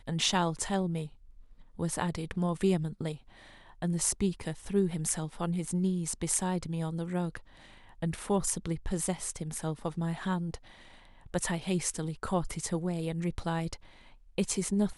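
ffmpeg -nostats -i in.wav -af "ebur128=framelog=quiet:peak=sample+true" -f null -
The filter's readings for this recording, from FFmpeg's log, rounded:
Integrated loudness:
  I:         -32.3 LUFS
  Threshold: -43.0 LUFS
Loudness range:
  LRA:         2.9 LU
  Threshold: -53.1 LUFS
  LRA low:   -34.4 LUFS
  LRA high:  -31.5 LUFS
Sample peak:
  Peak:      -11.4 dBFS
True peak:
  Peak:      -11.2 dBFS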